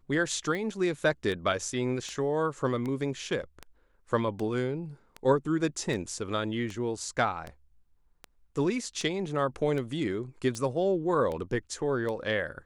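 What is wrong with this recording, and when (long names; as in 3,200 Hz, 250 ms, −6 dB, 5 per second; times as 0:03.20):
scratch tick 78 rpm −23 dBFS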